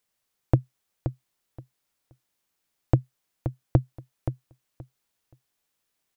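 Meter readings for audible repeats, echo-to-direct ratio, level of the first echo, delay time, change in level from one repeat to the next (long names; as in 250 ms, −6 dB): 2, −9.0 dB, −9.0 dB, 525 ms, −14.5 dB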